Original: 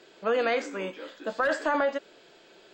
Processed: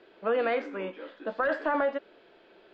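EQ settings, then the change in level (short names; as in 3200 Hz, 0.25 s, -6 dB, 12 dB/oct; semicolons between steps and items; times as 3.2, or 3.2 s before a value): air absorption 330 m; bell 150 Hz -10 dB 0.31 oct; 0.0 dB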